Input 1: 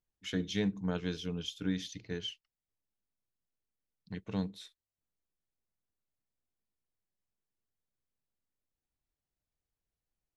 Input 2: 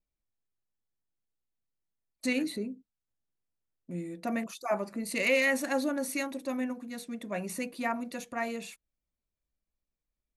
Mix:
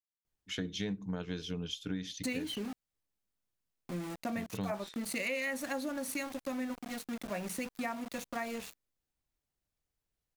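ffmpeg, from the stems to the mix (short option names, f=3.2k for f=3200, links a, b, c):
-filter_complex "[0:a]adelay=250,volume=2.5dB[a];[1:a]adynamicequalizer=threshold=0.00316:dfrequency=400:dqfactor=2.8:tfrequency=400:tqfactor=2.8:attack=5:release=100:ratio=0.375:range=3:mode=cutabove:tftype=bell,aeval=exprs='val(0)*gte(abs(val(0)),0.01)':c=same,volume=1dB[b];[a][b]amix=inputs=2:normalize=0,acompressor=threshold=-34dB:ratio=4"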